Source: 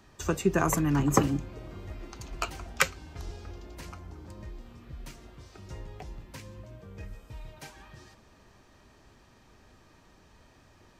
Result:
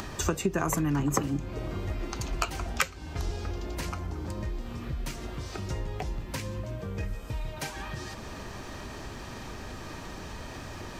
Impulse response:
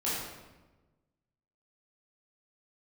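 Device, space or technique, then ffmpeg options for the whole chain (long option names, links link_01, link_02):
upward and downward compression: -af "acompressor=mode=upward:threshold=-37dB:ratio=2.5,acompressor=threshold=-33dB:ratio=5,volume=8dB"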